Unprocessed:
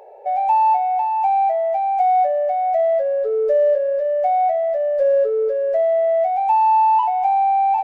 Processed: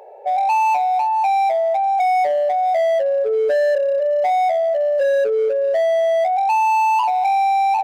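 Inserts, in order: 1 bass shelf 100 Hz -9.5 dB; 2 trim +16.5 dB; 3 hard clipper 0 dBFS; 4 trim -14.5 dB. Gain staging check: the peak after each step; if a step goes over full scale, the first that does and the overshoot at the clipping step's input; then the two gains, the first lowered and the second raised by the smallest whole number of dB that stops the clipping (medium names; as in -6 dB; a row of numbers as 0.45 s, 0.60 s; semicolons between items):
-8.5 dBFS, +8.0 dBFS, 0.0 dBFS, -14.5 dBFS; step 2, 8.0 dB; step 2 +8.5 dB, step 4 -6.5 dB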